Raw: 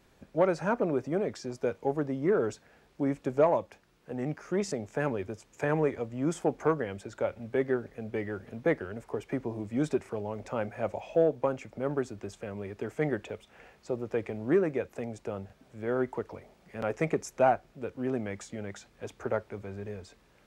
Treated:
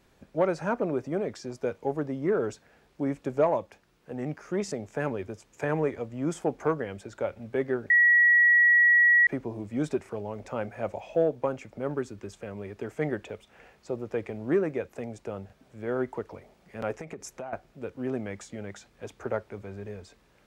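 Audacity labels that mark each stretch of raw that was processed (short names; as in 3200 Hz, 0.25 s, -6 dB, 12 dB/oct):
7.900000	9.270000	bleep 1920 Hz -16 dBFS
11.940000	12.340000	bell 690 Hz -12.5 dB 0.25 oct
16.950000	17.530000	compressor 20:1, threshold -34 dBFS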